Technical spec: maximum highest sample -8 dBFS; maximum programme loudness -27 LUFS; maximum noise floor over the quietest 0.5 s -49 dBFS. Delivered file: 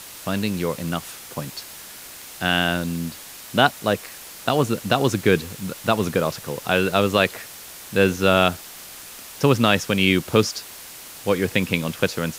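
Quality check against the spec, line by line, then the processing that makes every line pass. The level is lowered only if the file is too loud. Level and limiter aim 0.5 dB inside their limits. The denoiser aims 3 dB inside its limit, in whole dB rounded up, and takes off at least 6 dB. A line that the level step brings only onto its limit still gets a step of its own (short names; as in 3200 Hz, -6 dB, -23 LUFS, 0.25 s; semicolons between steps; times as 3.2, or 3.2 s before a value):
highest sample -2.5 dBFS: fail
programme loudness -21.5 LUFS: fail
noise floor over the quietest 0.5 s -40 dBFS: fail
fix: denoiser 6 dB, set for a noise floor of -40 dBFS; gain -6 dB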